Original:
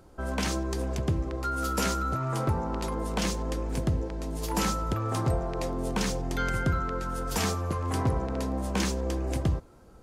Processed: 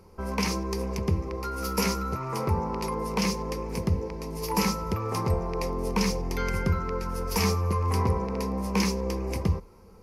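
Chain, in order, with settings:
EQ curve with evenly spaced ripples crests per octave 0.84, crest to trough 11 dB

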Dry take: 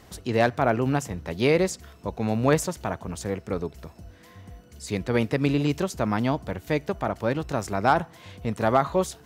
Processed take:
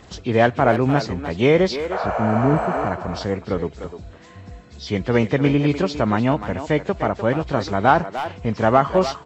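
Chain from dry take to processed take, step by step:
hearing-aid frequency compression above 2,000 Hz 1.5 to 1
healed spectral selection 0:01.94–0:02.84, 440–7,700 Hz after
far-end echo of a speakerphone 300 ms, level −9 dB
level +5.5 dB

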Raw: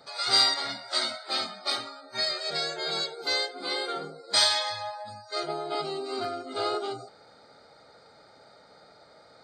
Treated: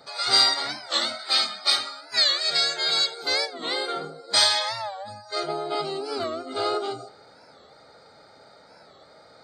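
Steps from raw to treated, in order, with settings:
0:01.19–0:03.23: tilt shelving filter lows −6.5 dB
dense smooth reverb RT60 0.97 s, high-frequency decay 0.85×, DRR 18 dB
wow of a warped record 45 rpm, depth 160 cents
level +3 dB

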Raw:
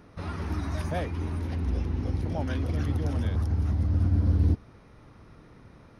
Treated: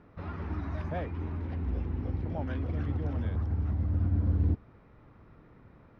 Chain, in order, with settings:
low-pass filter 2,400 Hz 12 dB per octave
level −4 dB

